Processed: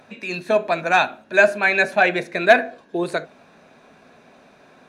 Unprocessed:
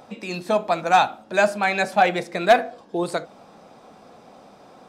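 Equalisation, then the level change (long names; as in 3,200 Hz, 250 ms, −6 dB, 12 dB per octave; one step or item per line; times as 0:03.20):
drawn EQ curve 340 Hz 0 dB, 1,000 Hz −3 dB, 1,800 Hz +9 dB, 4,900 Hz −1 dB
dynamic equaliser 440 Hz, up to +6 dB, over −33 dBFS, Q 0.72
EQ curve with evenly spaced ripples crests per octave 1.5, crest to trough 6 dB
−2.5 dB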